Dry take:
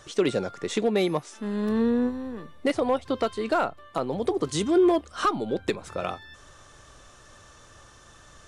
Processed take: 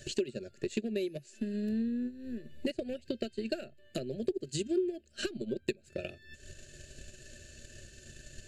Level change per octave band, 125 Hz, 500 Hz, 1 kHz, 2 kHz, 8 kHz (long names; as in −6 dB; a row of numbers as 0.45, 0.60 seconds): −7.5, −10.5, −28.0, −10.5, −6.0 decibels